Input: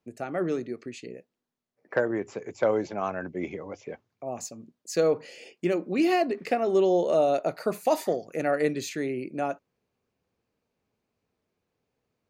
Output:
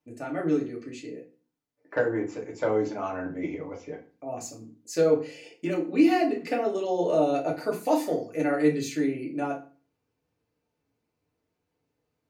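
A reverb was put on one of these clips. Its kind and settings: FDN reverb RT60 0.37 s, low-frequency decay 1.35×, high-frequency decay 0.8×, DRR -2.5 dB; trim -5 dB

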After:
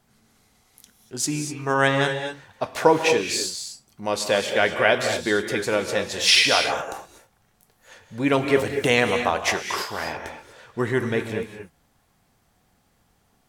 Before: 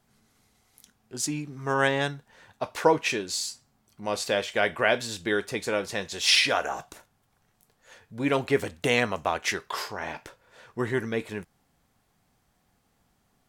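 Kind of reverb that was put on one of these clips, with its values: gated-style reverb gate 270 ms rising, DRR 6 dB; trim +4 dB

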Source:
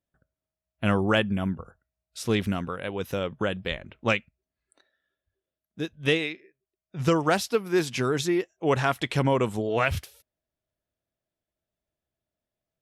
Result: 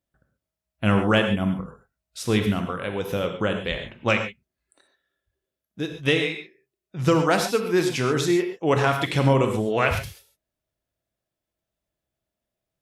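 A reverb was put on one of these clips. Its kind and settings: gated-style reverb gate 160 ms flat, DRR 4.5 dB; trim +2 dB

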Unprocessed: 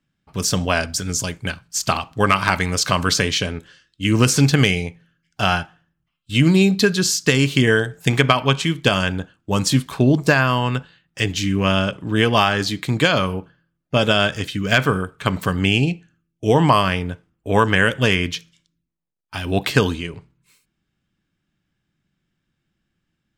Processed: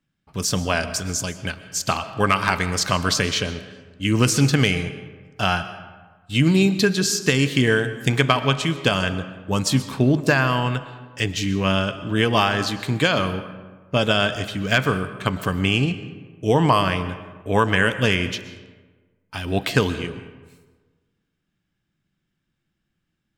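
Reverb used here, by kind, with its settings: algorithmic reverb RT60 1.4 s, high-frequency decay 0.55×, pre-delay 85 ms, DRR 12.5 dB; trim -2.5 dB

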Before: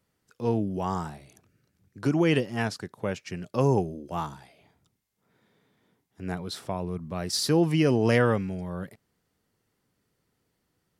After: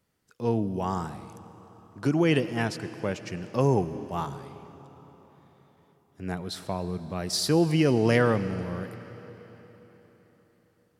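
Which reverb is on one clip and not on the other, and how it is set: algorithmic reverb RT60 4.3 s, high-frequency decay 0.9×, pre-delay 60 ms, DRR 13 dB

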